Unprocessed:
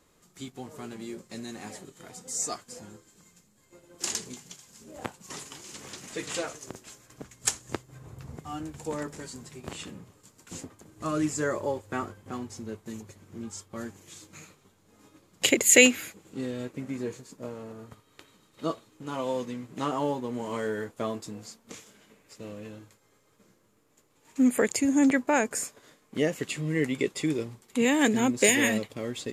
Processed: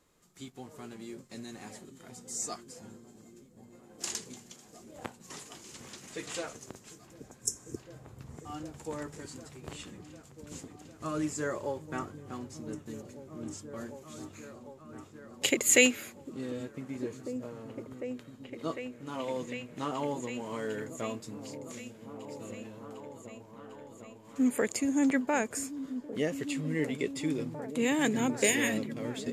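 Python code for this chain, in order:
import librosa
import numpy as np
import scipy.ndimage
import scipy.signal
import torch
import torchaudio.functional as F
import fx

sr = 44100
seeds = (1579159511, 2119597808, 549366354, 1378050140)

y = fx.spec_repair(x, sr, seeds[0], start_s=7.1, length_s=0.84, low_hz=480.0, high_hz=5100.0, source='both')
y = fx.echo_opening(y, sr, ms=751, hz=200, octaves=1, feedback_pct=70, wet_db=-6)
y = y * 10.0 ** (-5.0 / 20.0)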